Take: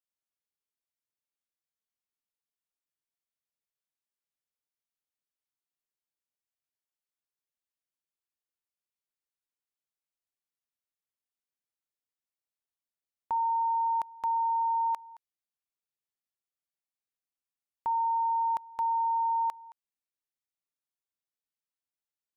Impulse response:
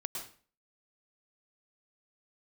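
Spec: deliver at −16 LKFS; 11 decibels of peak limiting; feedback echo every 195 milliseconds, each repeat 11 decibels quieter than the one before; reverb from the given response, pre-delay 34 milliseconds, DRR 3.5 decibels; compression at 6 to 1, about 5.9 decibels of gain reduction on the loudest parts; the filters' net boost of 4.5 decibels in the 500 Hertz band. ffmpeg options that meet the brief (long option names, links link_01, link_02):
-filter_complex "[0:a]equalizer=frequency=500:width_type=o:gain=6,acompressor=threshold=-31dB:ratio=6,alimiter=level_in=9dB:limit=-24dB:level=0:latency=1,volume=-9dB,aecho=1:1:195|390|585:0.282|0.0789|0.0221,asplit=2[link_01][link_02];[1:a]atrim=start_sample=2205,adelay=34[link_03];[link_02][link_03]afir=irnorm=-1:irlink=0,volume=-4dB[link_04];[link_01][link_04]amix=inputs=2:normalize=0,volume=20.5dB"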